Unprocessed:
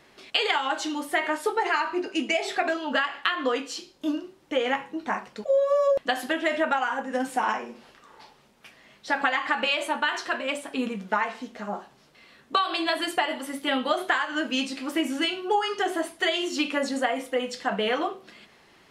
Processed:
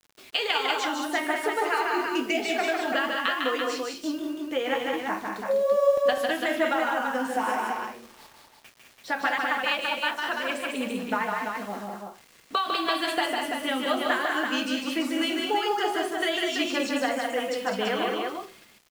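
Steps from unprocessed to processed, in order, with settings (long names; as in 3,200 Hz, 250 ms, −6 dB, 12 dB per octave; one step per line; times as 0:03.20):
0:09.38–0:10.22: noise gate −25 dBFS, range −10 dB
bit reduction 8 bits
multi-tap delay 151/201/336 ms −4/−5.5/−5 dB
level −3 dB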